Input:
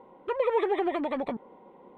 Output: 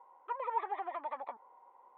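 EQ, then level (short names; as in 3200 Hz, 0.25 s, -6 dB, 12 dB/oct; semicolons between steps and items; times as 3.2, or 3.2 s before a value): ladder band-pass 1100 Hz, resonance 50%; +3.0 dB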